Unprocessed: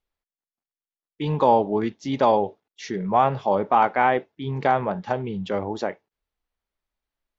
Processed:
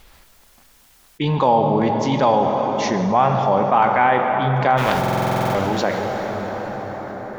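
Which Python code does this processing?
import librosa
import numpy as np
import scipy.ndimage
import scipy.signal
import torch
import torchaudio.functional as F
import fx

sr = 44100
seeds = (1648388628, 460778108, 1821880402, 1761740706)

y = fx.spec_flatten(x, sr, power=0.43, at=(4.77, 5.5), fade=0.02)
y = fx.peak_eq(y, sr, hz=400.0, db=-4.5, octaves=1.1)
y = fx.rev_plate(y, sr, seeds[0], rt60_s=4.7, hf_ratio=0.6, predelay_ms=0, drr_db=5.5)
y = fx.buffer_glitch(y, sr, at_s=(4.99,), block=2048, repeats=11)
y = fx.env_flatten(y, sr, amount_pct=50)
y = y * librosa.db_to_amplitude(2.0)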